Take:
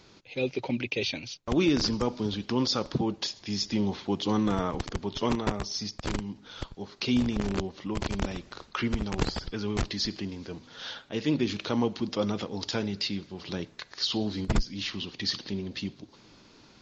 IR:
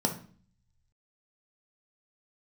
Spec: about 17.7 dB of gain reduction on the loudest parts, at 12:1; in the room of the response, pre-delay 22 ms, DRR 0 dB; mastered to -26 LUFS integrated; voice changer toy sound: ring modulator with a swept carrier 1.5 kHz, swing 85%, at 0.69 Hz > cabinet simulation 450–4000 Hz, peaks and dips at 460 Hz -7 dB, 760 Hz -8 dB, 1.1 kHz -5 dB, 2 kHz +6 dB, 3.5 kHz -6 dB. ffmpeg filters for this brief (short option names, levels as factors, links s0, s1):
-filter_complex "[0:a]acompressor=threshold=0.0158:ratio=12,asplit=2[s0][s1];[1:a]atrim=start_sample=2205,adelay=22[s2];[s1][s2]afir=irnorm=-1:irlink=0,volume=0.398[s3];[s0][s3]amix=inputs=2:normalize=0,aeval=exprs='val(0)*sin(2*PI*1500*n/s+1500*0.85/0.69*sin(2*PI*0.69*n/s))':c=same,highpass=450,equalizer=f=460:t=q:w=4:g=-7,equalizer=f=760:t=q:w=4:g=-8,equalizer=f=1100:t=q:w=4:g=-5,equalizer=f=2000:t=q:w=4:g=6,equalizer=f=3500:t=q:w=4:g=-6,lowpass=f=4000:w=0.5412,lowpass=f=4000:w=1.3066,volume=2.66"